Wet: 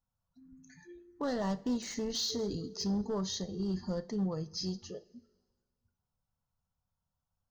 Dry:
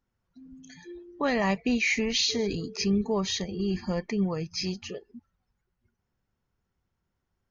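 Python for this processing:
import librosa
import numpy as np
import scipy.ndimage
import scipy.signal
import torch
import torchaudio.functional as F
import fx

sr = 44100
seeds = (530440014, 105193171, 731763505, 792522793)

y = np.clip(x, -10.0 ** (-22.5 / 20.0), 10.0 ** (-22.5 / 20.0))
y = fx.env_phaser(y, sr, low_hz=350.0, high_hz=2400.0, full_db=-33.5)
y = fx.rev_double_slope(y, sr, seeds[0], early_s=0.31, late_s=1.6, knee_db=-18, drr_db=11.0)
y = F.gain(torch.from_numpy(y), -5.5).numpy()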